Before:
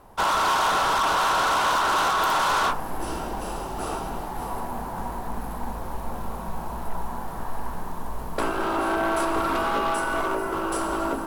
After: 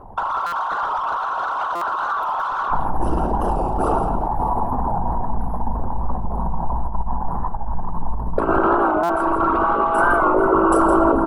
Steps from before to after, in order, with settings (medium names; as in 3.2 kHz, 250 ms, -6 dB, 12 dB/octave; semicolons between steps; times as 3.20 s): resonances exaggerated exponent 2; compressor with a negative ratio -26 dBFS, ratio -0.5; delay 164 ms -9 dB; buffer glitch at 0.46/1.75/9.03 s, samples 256, times 10; warped record 45 rpm, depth 100 cents; trim +8.5 dB